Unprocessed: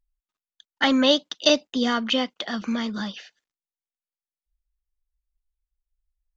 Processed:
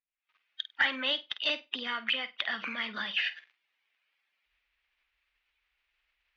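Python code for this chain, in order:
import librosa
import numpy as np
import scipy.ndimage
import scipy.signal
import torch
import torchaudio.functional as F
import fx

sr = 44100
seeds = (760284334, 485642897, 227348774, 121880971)

p1 = fx.spec_quant(x, sr, step_db=15)
p2 = fx.recorder_agc(p1, sr, target_db=-13.5, rise_db_per_s=73.0, max_gain_db=30)
p3 = fx.bandpass_q(p2, sr, hz=2400.0, q=2.4)
p4 = fx.room_flutter(p3, sr, wall_m=8.5, rt60_s=0.21)
p5 = 10.0 ** (-20.5 / 20.0) * (np.abs((p4 / 10.0 ** (-20.5 / 20.0) + 3.0) % 4.0 - 2.0) - 1.0)
p6 = p4 + (p5 * librosa.db_to_amplitude(-7.0))
y = fx.air_absorb(p6, sr, metres=240.0)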